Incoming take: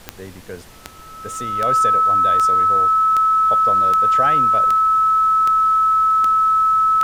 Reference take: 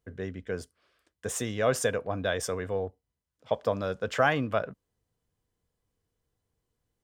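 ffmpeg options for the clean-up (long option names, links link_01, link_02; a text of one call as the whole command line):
ffmpeg -i in.wav -af "adeclick=threshold=4,bandreject=frequency=1300:width=30,agate=range=-21dB:threshold=-30dB" out.wav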